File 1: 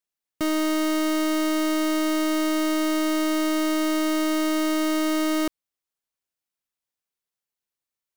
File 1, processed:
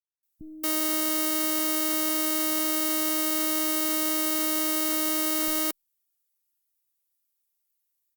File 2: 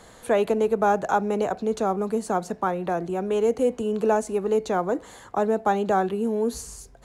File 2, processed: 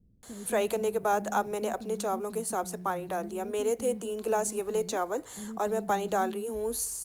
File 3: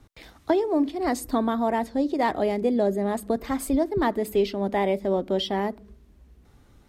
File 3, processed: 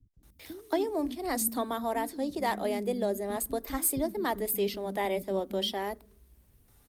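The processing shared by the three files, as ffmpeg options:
-filter_complex "[0:a]aemphasis=mode=production:type=75fm,acrossover=split=240[a][b];[b]adelay=230[c];[a][c]amix=inputs=2:normalize=0,volume=-5.5dB" -ar 48000 -c:a libopus -b:a 48k

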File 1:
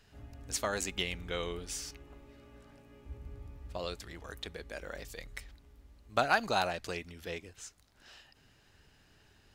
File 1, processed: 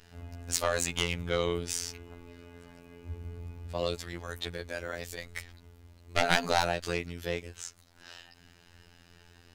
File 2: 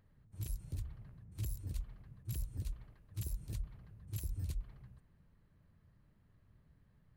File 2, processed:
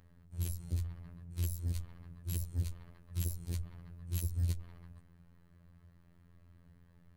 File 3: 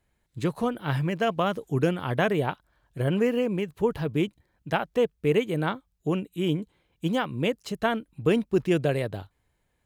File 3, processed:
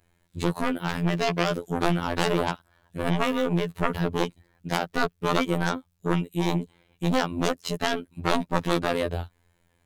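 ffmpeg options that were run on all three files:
-af "aeval=exprs='0.335*(cos(1*acos(clip(val(0)/0.335,-1,1)))-cos(1*PI/2))+0.133*(cos(3*acos(clip(val(0)/0.335,-1,1)))-cos(3*PI/2))+0.0668*(cos(4*acos(clip(val(0)/0.335,-1,1)))-cos(4*PI/2))+0.15*(cos(7*acos(clip(val(0)/0.335,-1,1)))-cos(7*PI/2))':c=same,afftfilt=real='hypot(re,im)*cos(PI*b)':imag='0':win_size=2048:overlap=0.75,volume=-1dB"

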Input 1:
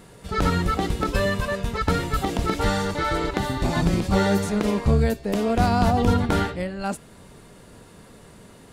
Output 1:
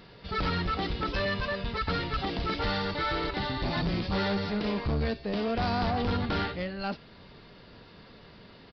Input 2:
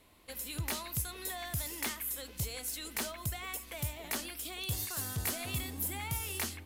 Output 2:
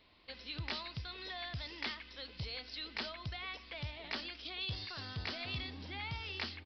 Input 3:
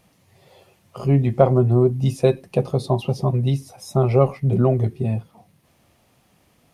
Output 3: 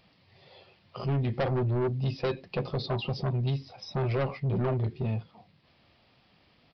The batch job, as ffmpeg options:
-af "highshelf=f=2k:g=8.5,aresample=11025,asoftclip=type=tanh:threshold=-19dB,aresample=44100,volume=-5dB"

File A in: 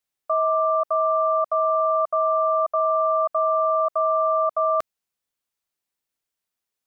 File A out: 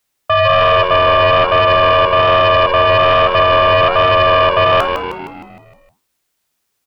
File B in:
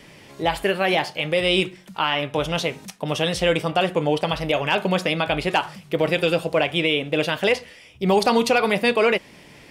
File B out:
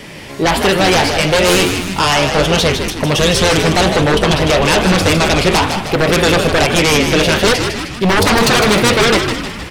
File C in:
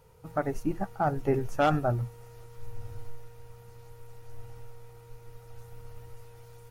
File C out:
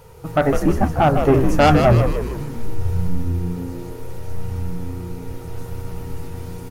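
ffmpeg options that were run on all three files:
-filter_complex "[0:a]flanger=delay=9.1:depth=9.8:regen=76:speed=1.2:shape=sinusoidal,aeval=exprs='0.282*sin(PI/2*3.98*val(0)/0.282)':c=same,asplit=8[a][b][c][d][e][f][g][h];[b]adelay=155,afreqshift=-88,volume=-6.5dB[i];[c]adelay=310,afreqshift=-176,volume=-11.7dB[j];[d]adelay=465,afreqshift=-264,volume=-16.9dB[k];[e]adelay=620,afreqshift=-352,volume=-22.1dB[l];[f]adelay=775,afreqshift=-440,volume=-27.3dB[m];[g]adelay=930,afreqshift=-528,volume=-32.5dB[n];[h]adelay=1085,afreqshift=-616,volume=-37.7dB[o];[a][i][j][k][l][m][n][o]amix=inputs=8:normalize=0,volume=2.5dB"

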